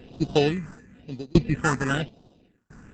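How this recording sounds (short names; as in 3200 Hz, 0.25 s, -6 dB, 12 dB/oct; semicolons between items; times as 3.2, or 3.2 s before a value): aliases and images of a low sample rate 2200 Hz, jitter 0%; tremolo saw down 0.74 Hz, depth 100%; phasing stages 4, 1 Hz, lowest notch 550–1900 Hz; Opus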